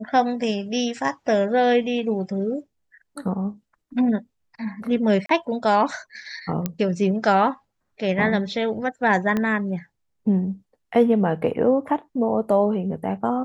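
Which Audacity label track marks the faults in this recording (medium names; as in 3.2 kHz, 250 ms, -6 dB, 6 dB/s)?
5.260000	5.290000	dropout 33 ms
6.660000	6.660000	pop -10 dBFS
9.370000	9.370000	pop -12 dBFS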